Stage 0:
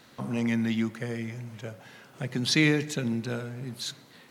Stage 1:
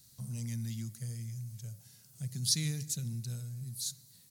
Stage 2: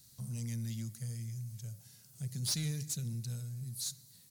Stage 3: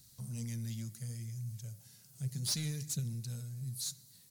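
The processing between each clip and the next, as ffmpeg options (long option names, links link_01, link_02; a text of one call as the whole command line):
ffmpeg -i in.wav -af "firequalizer=gain_entry='entry(110,0);entry(280,-24);entry(1100,-26);entry(3000,-18);entry(4600,-2);entry(9400,8)':delay=0.05:min_phase=1" out.wav
ffmpeg -i in.wav -af "asoftclip=type=tanh:threshold=-28.5dB" out.wav
ffmpeg -i in.wav -af "flanger=delay=0:depth=7.9:regen=72:speed=0.67:shape=triangular,volume=4dB" out.wav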